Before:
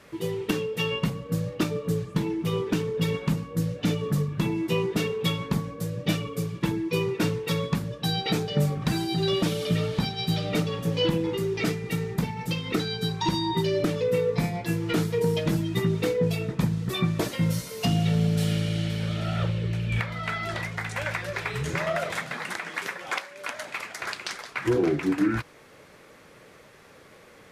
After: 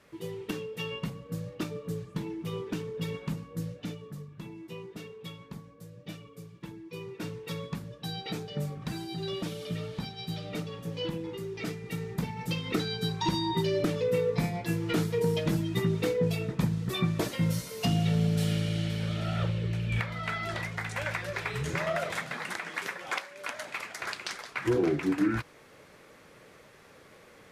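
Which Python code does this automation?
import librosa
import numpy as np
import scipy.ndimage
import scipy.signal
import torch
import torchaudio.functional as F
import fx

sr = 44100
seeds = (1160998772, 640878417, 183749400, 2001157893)

y = fx.gain(x, sr, db=fx.line((3.68, -8.5), (4.08, -17.0), (6.83, -17.0), (7.47, -10.0), (11.52, -10.0), (12.54, -3.0)))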